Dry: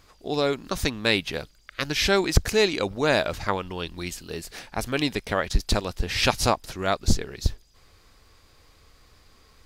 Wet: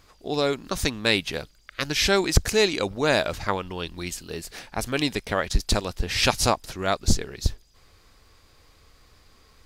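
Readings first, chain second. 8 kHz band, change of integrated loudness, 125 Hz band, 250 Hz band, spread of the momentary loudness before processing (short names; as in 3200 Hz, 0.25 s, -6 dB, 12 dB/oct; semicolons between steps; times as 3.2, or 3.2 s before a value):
+3.0 dB, +0.5 dB, 0.0 dB, 0.0 dB, 12 LU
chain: dynamic EQ 8100 Hz, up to +4 dB, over -40 dBFS, Q 0.78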